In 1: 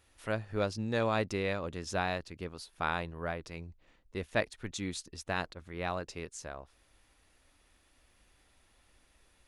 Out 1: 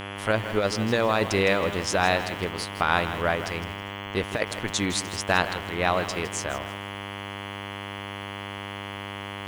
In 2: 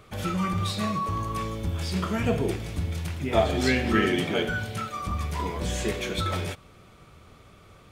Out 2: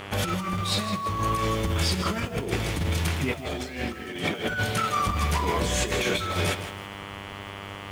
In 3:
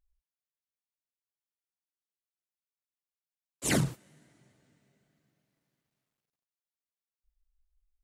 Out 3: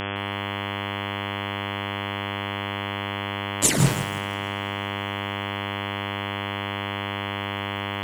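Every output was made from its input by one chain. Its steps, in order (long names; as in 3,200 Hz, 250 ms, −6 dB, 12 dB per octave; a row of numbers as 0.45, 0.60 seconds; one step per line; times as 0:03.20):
low-shelf EQ 380 Hz −5.5 dB
sine wavefolder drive 4 dB, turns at −9 dBFS
hum with harmonics 100 Hz, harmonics 34, −41 dBFS −2 dB per octave
compressor whose output falls as the input rises −25 dBFS, ratio −0.5
feedback echo at a low word length 161 ms, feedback 35%, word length 7 bits, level −11 dB
loudness normalisation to −27 LKFS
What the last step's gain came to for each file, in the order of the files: +4.5, −1.5, +9.5 decibels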